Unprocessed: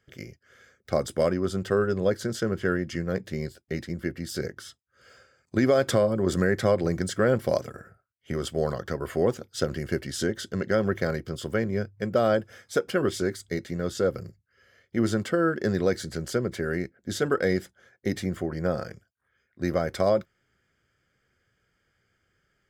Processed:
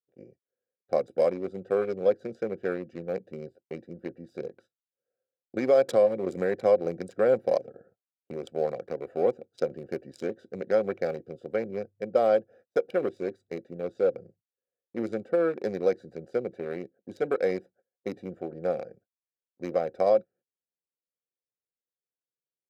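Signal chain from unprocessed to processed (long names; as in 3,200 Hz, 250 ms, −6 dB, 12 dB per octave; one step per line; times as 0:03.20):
adaptive Wiener filter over 41 samples
noise gate −52 dBFS, range −24 dB
high-pass filter 200 Hz 12 dB per octave
hollow resonant body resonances 520/730/2,300/3,900 Hz, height 11 dB, ringing for 25 ms
level −7 dB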